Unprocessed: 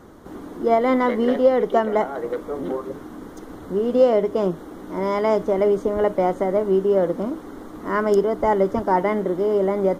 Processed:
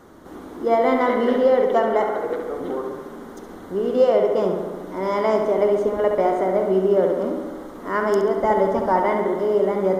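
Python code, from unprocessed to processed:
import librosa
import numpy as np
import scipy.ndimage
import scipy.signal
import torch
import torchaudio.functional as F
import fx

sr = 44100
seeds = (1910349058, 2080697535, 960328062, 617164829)

p1 = fx.low_shelf(x, sr, hz=240.0, db=-7.0)
y = p1 + fx.echo_filtered(p1, sr, ms=69, feedback_pct=72, hz=4200.0, wet_db=-5, dry=0)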